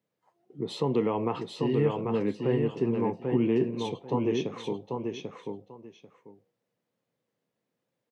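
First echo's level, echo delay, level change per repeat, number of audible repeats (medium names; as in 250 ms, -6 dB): -4.0 dB, 791 ms, -14.5 dB, 2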